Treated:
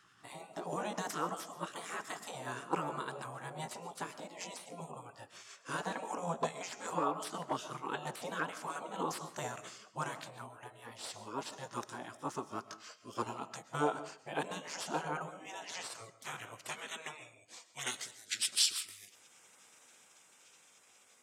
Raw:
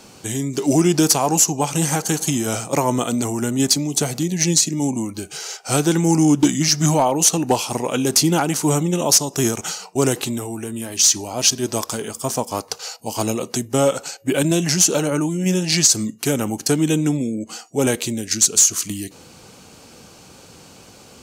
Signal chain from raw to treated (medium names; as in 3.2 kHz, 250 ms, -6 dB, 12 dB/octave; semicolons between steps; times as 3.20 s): pitch bend over the whole clip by +3 st ending unshifted; dynamic bell 6.3 kHz, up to +6 dB, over -33 dBFS, Q 2.4; band-pass sweep 690 Hz -> 4.1 kHz, 15.53–18.93 s; spectral gate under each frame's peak -15 dB weak; on a send: reverberation RT60 0.45 s, pre-delay 90 ms, DRR 13.5 dB; on the sum: trim +3 dB